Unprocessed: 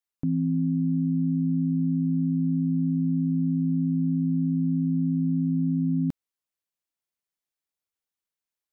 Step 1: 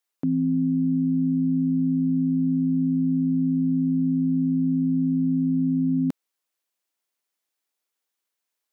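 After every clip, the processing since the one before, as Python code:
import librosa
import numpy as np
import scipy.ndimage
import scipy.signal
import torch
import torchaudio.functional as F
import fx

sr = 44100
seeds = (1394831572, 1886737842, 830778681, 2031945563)

y = scipy.signal.sosfilt(scipy.signal.butter(2, 270.0, 'highpass', fs=sr, output='sos'), x)
y = y * 10.0 ** (7.5 / 20.0)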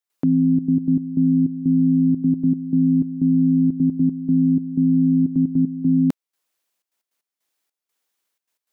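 y = fx.step_gate(x, sr, bpm=154, pattern='.xxxxx.x.x..xxx.', floor_db=-12.0, edge_ms=4.5)
y = y * 10.0 ** (6.0 / 20.0)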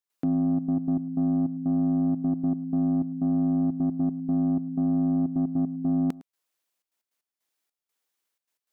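y = 10.0 ** (-14.5 / 20.0) * np.tanh(x / 10.0 ** (-14.5 / 20.0))
y = y + 10.0 ** (-20.0 / 20.0) * np.pad(y, (int(108 * sr / 1000.0), 0))[:len(y)]
y = y * 10.0 ** (-4.5 / 20.0)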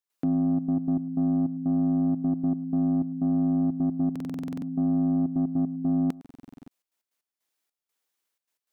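y = fx.buffer_glitch(x, sr, at_s=(4.11, 6.2), block=2048, repeats=10)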